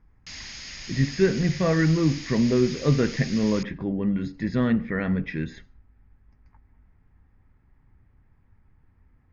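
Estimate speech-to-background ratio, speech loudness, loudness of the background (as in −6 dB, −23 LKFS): 13.0 dB, −24.5 LKFS, −37.5 LKFS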